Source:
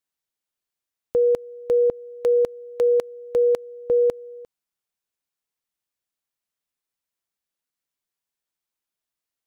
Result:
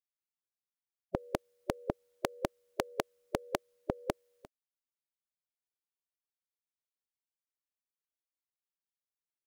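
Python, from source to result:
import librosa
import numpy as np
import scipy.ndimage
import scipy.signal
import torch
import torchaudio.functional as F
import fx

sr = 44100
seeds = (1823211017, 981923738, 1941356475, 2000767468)

y = fx.spec_gate(x, sr, threshold_db=-15, keep='weak')
y = y * 10.0 ** (5.0 / 20.0)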